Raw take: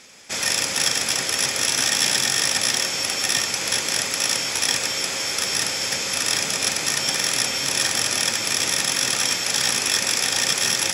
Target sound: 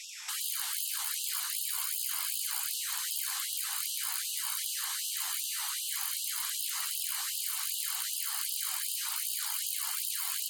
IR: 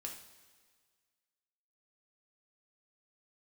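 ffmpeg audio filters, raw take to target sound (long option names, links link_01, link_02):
-filter_complex "[0:a]aeval=exprs='(tanh(5.62*val(0)+0.6)-tanh(0.6))/5.62':channel_layout=same,asplit=2[link_01][link_02];[link_02]alimiter=limit=-21.5dB:level=0:latency=1:release=66,volume=1dB[link_03];[link_01][link_03]amix=inputs=2:normalize=0,afftfilt=real='re*lt(hypot(re,im),0.0501)':imag='im*lt(hypot(re,im),0.0501)':win_size=1024:overlap=0.75,asetrate=45938,aresample=44100,afftfilt=real='re*gte(b*sr/1024,710*pow(2700/710,0.5+0.5*sin(2*PI*2.6*pts/sr)))':imag='im*gte(b*sr/1024,710*pow(2700/710,0.5+0.5*sin(2*PI*2.6*pts/sr)))':win_size=1024:overlap=0.75"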